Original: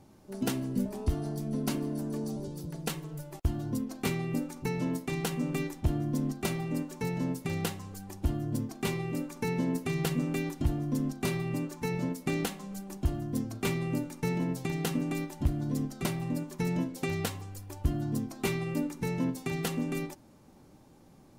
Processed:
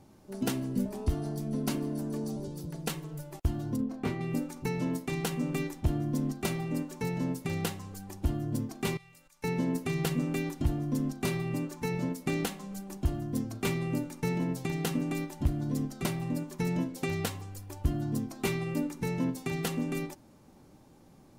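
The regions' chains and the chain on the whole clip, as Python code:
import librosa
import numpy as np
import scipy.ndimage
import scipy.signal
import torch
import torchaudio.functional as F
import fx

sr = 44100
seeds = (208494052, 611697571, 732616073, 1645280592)

y = fx.chain(x, sr, fx.lowpass(hz=1300.0, slope=6),
    fx.doubler(ms=27.0, db=-6.0), at=(3.76, 4.21))
y = fx.chain(y, sr, fx.level_steps(step_db=14),
    fx.tone_stack(knobs='10-0-10'), at=(8.97, 9.44))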